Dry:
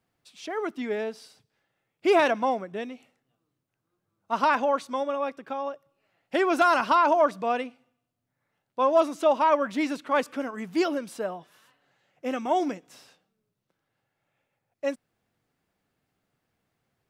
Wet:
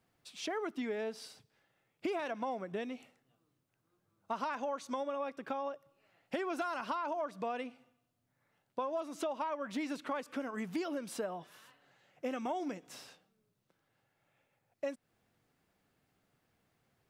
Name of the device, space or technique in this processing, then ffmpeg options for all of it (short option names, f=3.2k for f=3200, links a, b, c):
serial compression, leveller first: -filter_complex "[0:a]asettb=1/sr,asplit=3[a][b][c];[a]atrim=end=4.424[d];[b]atrim=start=4.42:end=4.96,asetpts=PTS-STARTPTS,afade=t=in:d=0.004:c=qsin,afade=t=out:st=0.536:d=0.004:c=qsin,equalizer=f=6.4k:t=o:w=0.38:g=6[e];[c]atrim=start=4.956[f];[d][e]acrossfade=d=0.004:c1=hsin:c2=qsin[g];[g][f]acrossfade=d=0.004:c1=qsin:c2=hsin,acompressor=threshold=-26dB:ratio=2,acompressor=threshold=-36dB:ratio=5,volume=1dB"